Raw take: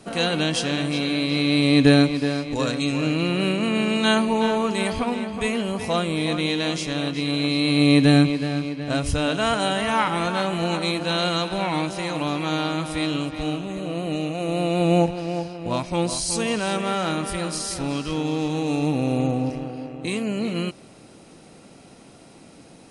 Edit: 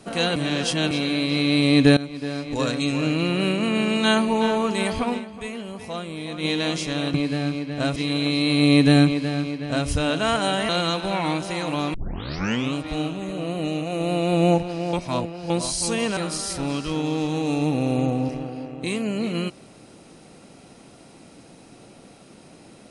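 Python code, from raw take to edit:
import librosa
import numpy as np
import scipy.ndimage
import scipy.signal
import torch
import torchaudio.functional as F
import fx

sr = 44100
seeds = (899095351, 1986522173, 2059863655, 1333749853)

y = fx.edit(x, sr, fx.reverse_span(start_s=0.36, length_s=0.55),
    fx.fade_in_from(start_s=1.97, length_s=0.64, floor_db=-19.5),
    fx.fade_down_up(start_s=5.17, length_s=1.28, db=-8.5, fade_s=0.32, curve='exp'),
    fx.duplicate(start_s=8.24, length_s=0.82, to_s=7.14),
    fx.cut(start_s=9.87, length_s=1.3),
    fx.tape_start(start_s=12.42, length_s=0.8),
    fx.reverse_span(start_s=15.41, length_s=0.57),
    fx.cut(start_s=16.65, length_s=0.73), tone=tone)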